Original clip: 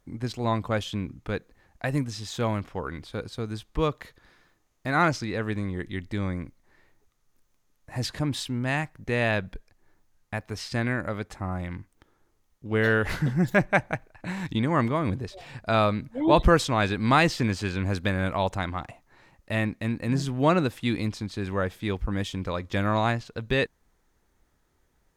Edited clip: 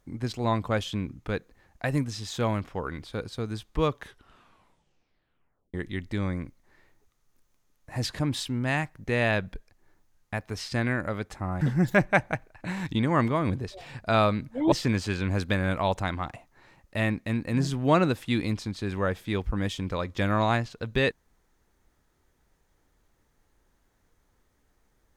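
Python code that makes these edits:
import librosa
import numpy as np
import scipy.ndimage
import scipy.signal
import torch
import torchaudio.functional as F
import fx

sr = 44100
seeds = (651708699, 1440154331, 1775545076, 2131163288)

y = fx.edit(x, sr, fx.tape_stop(start_s=3.87, length_s=1.87),
    fx.cut(start_s=11.61, length_s=1.6),
    fx.cut(start_s=16.32, length_s=0.95), tone=tone)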